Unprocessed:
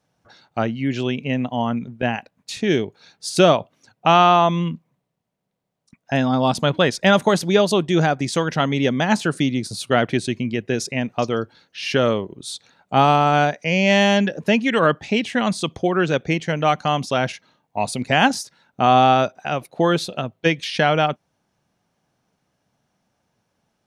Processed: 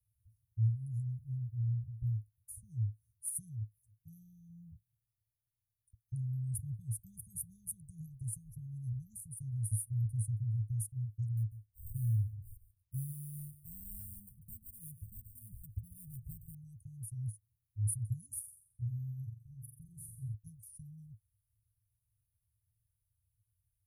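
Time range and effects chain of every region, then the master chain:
0:11.37–0:16.55: high-shelf EQ 9,800 Hz −9.5 dB + single-tap delay 143 ms −14 dB + linearly interpolated sample-rate reduction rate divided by 8×
0:18.39–0:20.34: high-shelf EQ 4,700 Hz −8 dB + flutter between parallel walls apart 7.5 metres, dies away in 0.58 s
whole clip: Chebyshev band-stop filter 110–9,700 Hz, order 5; dynamic equaliser 110 Hz, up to +4 dB, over −47 dBFS, Q 1.1; level +1 dB

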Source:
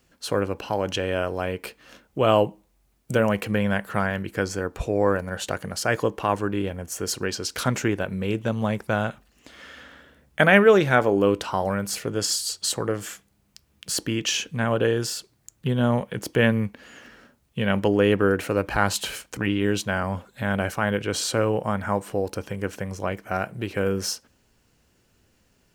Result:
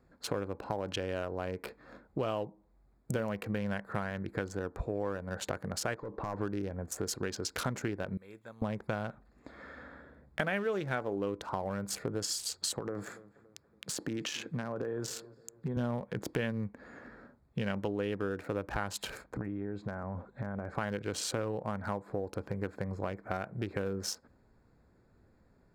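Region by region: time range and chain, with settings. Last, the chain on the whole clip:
0:05.94–0:06.41: high-frequency loss of the air 150 metres + downward compressor 3 to 1, threshold −28 dBFS + hard clipping −28.5 dBFS
0:08.17–0:08.62: first-order pre-emphasis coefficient 0.97 + upward compression, threshold −55 dBFS
0:12.79–0:15.77: high-pass filter 130 Hz + downward compressor, threshold −27 dBFS + feedback echo with a low-pass in the loop 284 ms, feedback 39%, low-pass 2,300 Hz, level −21 dB
0:19.24–0:20.75: downward compressor 10 to 1, threshold −30 dBFS + Savitzky-Golay smoothing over 9 samples + high-shelf EQ 2,800 Hz −9.5 dB
whole clip: adaptive Wiener filter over 15 samples; downward compressor 5 to 1, threshold −32 dBFS

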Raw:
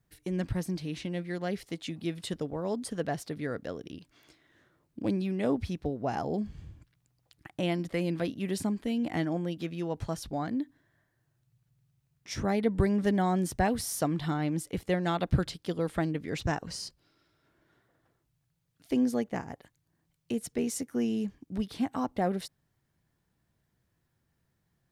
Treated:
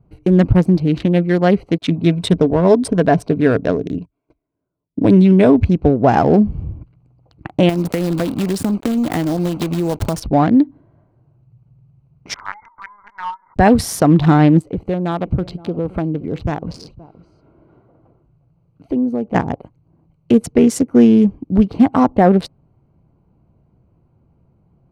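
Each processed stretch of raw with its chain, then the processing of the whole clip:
0:01.78–0:05.65: noise gate −57 dBFS, range −30 dB + EQ curve with evenly spaced ripples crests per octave 1.6, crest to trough 7 dB
0:07.69–0:10.20: one scale factor per block 3 bits + high-shelf EQ 4,700 Hz +10.5 dB + downward compressor 8 to 1, threshold −33 dBFS
0:12.34–0:13.56: downward compressor 4 to 1, threshold −28 dBFS + linear-phase brick-wall band-pass 830–2,200 Hz + linear-prediction vocoder at 8 kHz pitch kept
0:14.59–0:19.35: downward compressor 2 to 1, threshold −44 dBFS + single-tap delay 522 ms −19 dB
whole clip: adaptive Wiener filter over 25 samples; high-shelf EQ 4,400 Hz −12 dB; boost into a limiter +21.5 dB; level −1 dB

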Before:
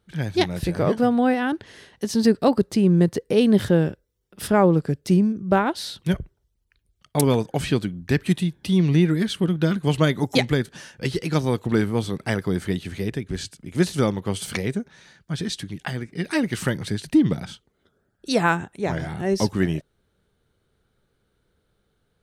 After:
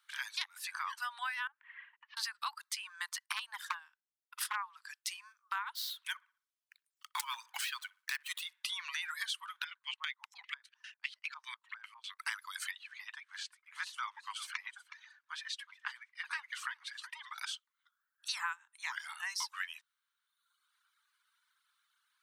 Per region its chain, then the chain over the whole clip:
0:01.47–0:02.17: Butterworth low-pass 2,600 Hz + noise gate −55 dBFS, range −14 dB + downward compressor 4 to 1, threshold −39 dBFS
0:03.26–0:04.62: tilt shelving filter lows +6 dB, about 700 Hz + transient designer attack +11 dB, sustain −5 dB + hard clipping −0.5 dBFS
0:05.75–0:08.64: gap after every zero crossing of 0.053 ms + delay with a low-pass on its return 62 ms, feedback 34%, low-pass 1,800 Hz, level −14.5 dB
0:09.64–0:12.19: auto-filter band-pass square 5 Hz 300–2,500 Hz + amplitude modulation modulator 200 Hz, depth 25%
0:12.71–0:17.38: RIAA equalisation playback + flanger 1.5 Hz, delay 2.7 ms, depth 4.4 ms, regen −53% + single-tap delay 368 ms −15 dB
whole clip: Butterworth high-pass 970 Hz 72 dB per octave; reverb reduction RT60 1.1 s; downward compressor 6 to 1, threshold −38 dBFS; level +2.5 dB

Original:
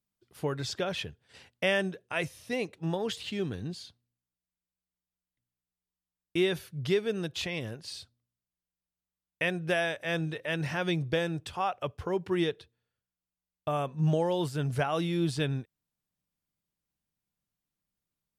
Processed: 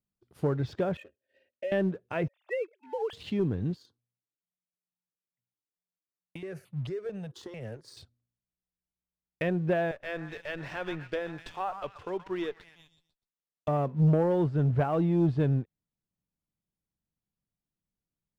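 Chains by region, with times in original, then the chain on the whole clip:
0:00.97–0:01.72: comb filter 3.2 ms, depth 92% + downward compressor, threshold −26 dBFS + formant filter e
0:02.28–0:03.13: three sine waves on the formant tracks + high-pass filter 510 Hz 24 dB per octave
0:03.76–0:07.97: high-pass filter 130 Hz 24 dB per octave + downward compressor 12 to 1, threshold −33 dBFS + step-sequenced phaser 4.5 Hz 650–1,600 Hz
0:09.91–0:13.68: high-pass filter 950 Hz 6 dB per octave + echo through a band-pass that steps 124 ms, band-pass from 1,200 Hz, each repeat 0.7 octaves, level −7 dB + windowed peak hold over 3 samples
whole clip: treble cut that deepens with the level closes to 1,900 Hz, closed at −29 dBFS; tilt shelving filter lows +6 dB, about 860 Hz; leveller curve on the samples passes 1; level −3 dB

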